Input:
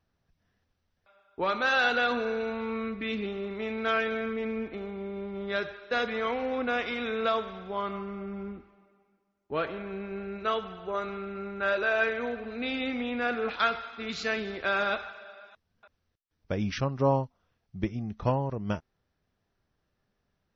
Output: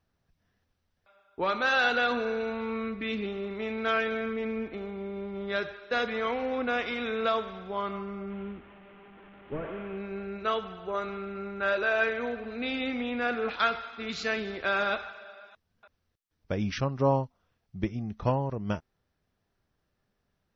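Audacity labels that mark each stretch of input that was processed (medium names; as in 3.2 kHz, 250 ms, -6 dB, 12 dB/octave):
8.300000	9.980000	one-bit delta coder 16 kbps, step -46 dBFS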